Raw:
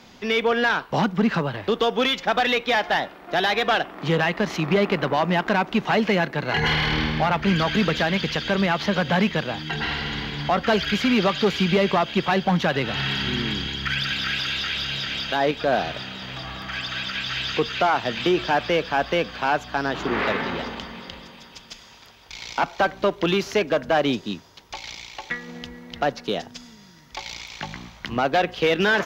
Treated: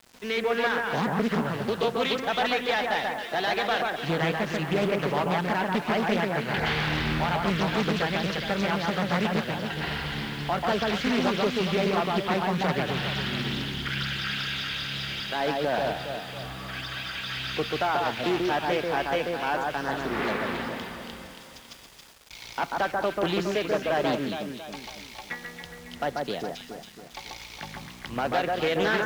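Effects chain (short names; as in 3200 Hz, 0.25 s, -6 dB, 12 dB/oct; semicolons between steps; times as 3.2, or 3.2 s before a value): echo with dull and thin repeats by turns 0.138 s, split 1800 Hz, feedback 67%, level -2 dB; bit-crush 7-bit; Doppler distortion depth 0.46 ms; gain -6.5 dB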